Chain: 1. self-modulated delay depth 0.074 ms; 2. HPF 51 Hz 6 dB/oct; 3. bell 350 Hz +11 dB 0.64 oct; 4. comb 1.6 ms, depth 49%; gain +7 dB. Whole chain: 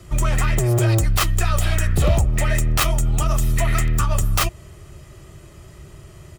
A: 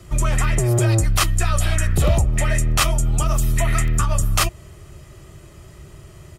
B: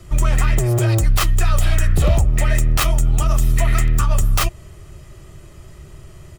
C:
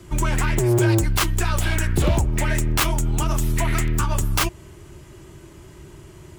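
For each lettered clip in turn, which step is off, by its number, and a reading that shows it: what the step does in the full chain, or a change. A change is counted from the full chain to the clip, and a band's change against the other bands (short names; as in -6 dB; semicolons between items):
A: 1, 8 kHz band +2.5 dB; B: 2, crest factor change -3.0 dB; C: 4, 250 Hz band +3.5 dB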